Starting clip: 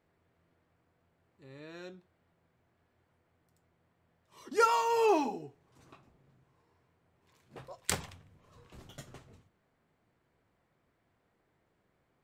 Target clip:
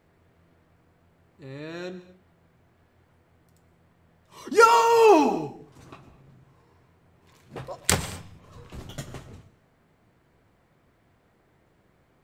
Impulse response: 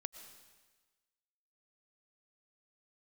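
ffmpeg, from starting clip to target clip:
-filter_complex "[0:a]asplit=2[link_01][link_02];[1:a]atrim=start_sample=2205,afade=type=out:start_time=0.31:duration=0.01,atrim=end_sample=14112,lowshelf=frequency=250:gain=6[link_03];[link_02][link_03]afir=irnorm=-1:irlink=0,volume=6dB[link_04];[link_01][link_04]amix=inputs=2:normalize=0,volume=2.5dB"

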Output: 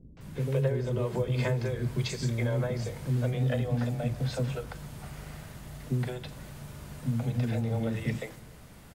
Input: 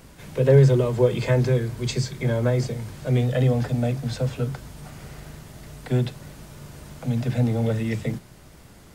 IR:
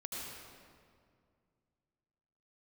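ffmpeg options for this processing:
-filter_complex "[0:a]acompressor=threshold=-22dB:ratio=6,acrossover=split=380|5800[link_01][link_02][link_03];[link_02]adelay=170[link_04];[link_03]adelay=210[link_05];[link_01][link_04][link_05]amix=inputs=3:normalize=0,asplit=2[link_06][link_07];[1:a]atrim=start_sample=2205,asetrate=66150,aresample=44100[link_08];[link_07][link_08]afir=irnorm=-1:irlink=0,volume=-14.5dB[link_09];[link_06][link_09]amix=inputs=2:normalize=0,volume=-2.5dB"

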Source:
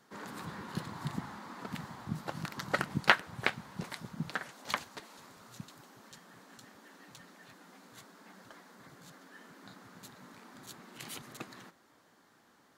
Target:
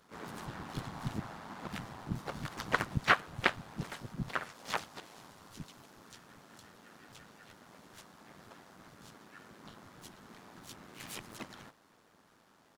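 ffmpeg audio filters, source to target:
ffmpeg -i in.wav -filter_complex "[0:a]tremolo=f=110:d=0.788,asplit=4[link_01][link_02][link_03][link_04];[link_02]asetrate=35002,aresample=44100,atempo=1.25992,volume=0dB[link_05];[link_03]asetrate=55563,aresample=44100,atempo=0.793701,volume=-11dB[link_06];[link_04]asetrate=66075,aresample=44100,atempo=0.66742,volume=-12dB[link_07];[link_01][link_05][link_06][link_07]amix=inputs=4:normalize=0" out.wav

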